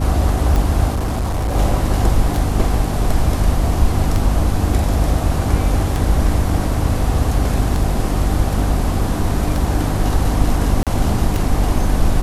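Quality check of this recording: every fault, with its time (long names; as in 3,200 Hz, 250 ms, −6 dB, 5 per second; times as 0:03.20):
mains hum 50 Hz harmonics 6 −21 dBFS
scratch tick 33 1/3 rpm
0:00.93–0:01.56: clipping −16 dBFS
0:10.83–0:10.87: drop-out 37 ms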